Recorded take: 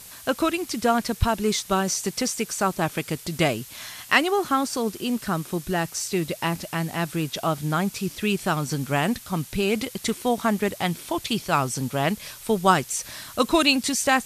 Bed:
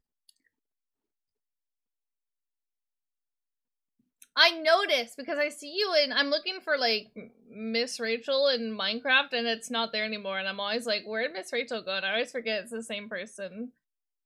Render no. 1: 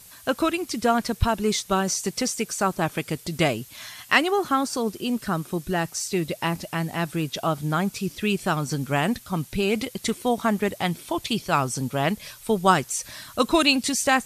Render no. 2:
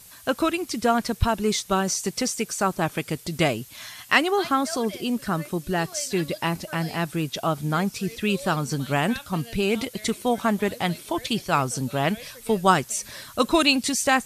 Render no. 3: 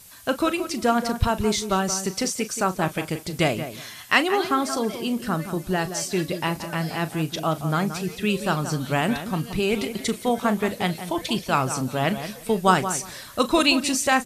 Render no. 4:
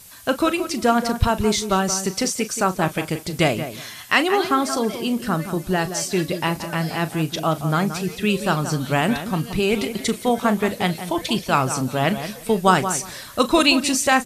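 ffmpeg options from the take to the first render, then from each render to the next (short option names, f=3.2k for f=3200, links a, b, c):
-af "afftdn=nr=6:nf=-44"
-filter_complex "[1:a]volume=-14.5dB[a];[0:a][a]amix=inputs=2:normalize=0"
-filter_complex "[0:a]asplit=2[a][b];[b]adelay=38,volume=-13.5dB[c];[a][c]amix=inputs=2:normalize=0,asplit=2[d][e];[e]adelay=176,lowpass=f=2.2k:p=1,volume=-10dB,asplit=2[f][g];[g]adelay=176,lowpass=f=2.2k:p=1,volume=0.18,asplit=2[h][i];[i]adelay=176,lowpass=f=2.2k:p=1,volume=0.18[j];[d][f][h][j]amix=inputs=4:normalize=0"
-af "volume=3dB,alimiter=limit=-3dB:level=0:latency=1"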